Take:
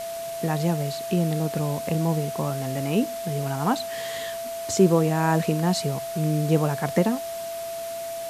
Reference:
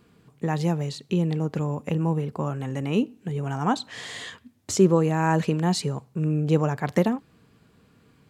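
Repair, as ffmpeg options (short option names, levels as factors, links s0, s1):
-af "bandreject=f=670:w=30,afwtdn=0.01"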